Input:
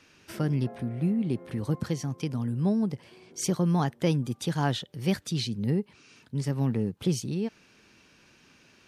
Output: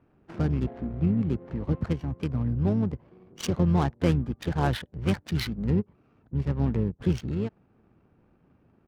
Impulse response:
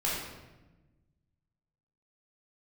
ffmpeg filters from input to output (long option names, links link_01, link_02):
-filter_complex "[0:a]asplit=4[link_01][link_02][link_03][link_04];[link_02]asetrate=22050,aresample=44100,atempo=2,volume=-4dB[link_05];[link_03]asetrate=37084,aresample=44100,atempo=1.18921,volume=-16dB[link_06];[link_04]asetrate=55563,aresample=44100,atempo=0.793701,volume=-17dB[link_07];[link_01][link_05][link_06][link_07]amix=inputs=4:normalize=0,adynamicsmooth=sensitivity=6.5:basefreq=560"